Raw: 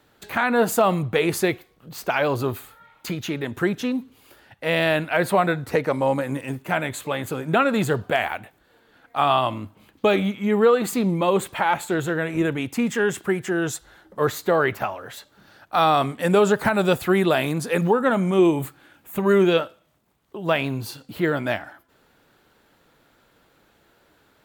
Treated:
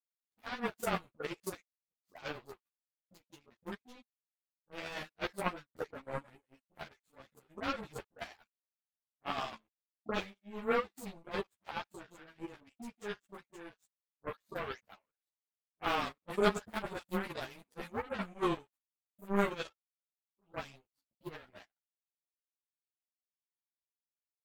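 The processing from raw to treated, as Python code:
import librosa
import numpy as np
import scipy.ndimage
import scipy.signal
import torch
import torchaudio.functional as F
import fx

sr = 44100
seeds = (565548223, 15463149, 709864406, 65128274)

y = fx.dispersion(x, sr, late='highs', ms=96.0, hz=500.0)
y = fx.power_curve(y, sr, exponent=3.0)
y = fx.ensemble(y, sr)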